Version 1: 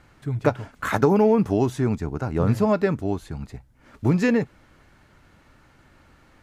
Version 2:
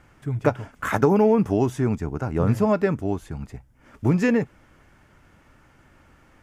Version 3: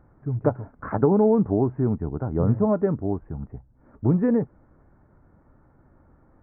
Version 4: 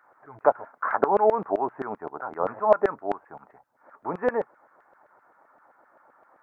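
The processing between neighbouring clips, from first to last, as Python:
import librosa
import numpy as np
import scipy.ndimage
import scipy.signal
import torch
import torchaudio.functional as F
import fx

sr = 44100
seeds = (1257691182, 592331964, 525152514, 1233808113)

y1 = fx.peak_eq(x, sr, hz=4100.0, db=-9.5, octaves=0.27)
y2 = scipy.ndimage.gaussian_filter1d(y1, 7.3, mode='constant')
y3 = fx.filter_lfo_highpass(y2, sr, shape='saw_down', hz=7.7, low_hz=590.0, high_hz=1600.0, q=1.8)
y3 = y3 * librosa.db_to_amplitude(5.5)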